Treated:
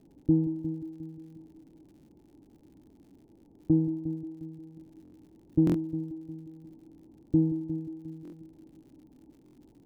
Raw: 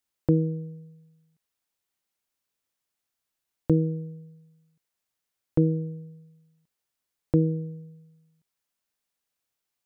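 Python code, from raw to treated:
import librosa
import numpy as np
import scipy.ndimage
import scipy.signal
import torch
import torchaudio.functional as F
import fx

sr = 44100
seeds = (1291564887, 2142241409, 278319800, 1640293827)

p1 = fx.delta_mod(x, sr, bps=32000, step_db=-39.0)
p2 = fx.highpass(p1, sr, hz=79.0, slope=6)
p3 = fx.low_shelf(p2, sr, hz=110.0, db=9.5)
p4 = fx.sample_hold(p3, sr, seeds[0], rate_hz=1100.0, jitter_pct=20)
p5 = p3 + F.gain(torch.from_numpy(p4), -6.5).numpy()
p6 = fx.formant_cascade(p5, sr, vowel='u')
p7 = fx.tilt_shelf(p6, sr, db=10.0, hz=970.0)
p8 = p7 + fx.echo_heads(p7, sr, ms=178, heads='first and second', feedback_pct=49, wet_db=-14.0, dry=0)
p9 = fx.dmg_crackle(p8, sr, seeds[1], per_s=110.0, level_db=-48.0)
p10 = fx.buffer_glitch(p9, sr, at_s=(5.03, 5.65, 8.23, 9.44), block=1024, repeats=3)
y = F.gain(torch.from_numpy(p10), -7.0).numpy()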